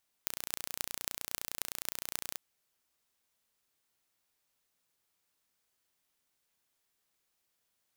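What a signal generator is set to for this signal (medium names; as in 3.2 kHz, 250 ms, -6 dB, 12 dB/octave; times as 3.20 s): pulse train 29.7 per s, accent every 8, -4.5 dBFS 2.12 s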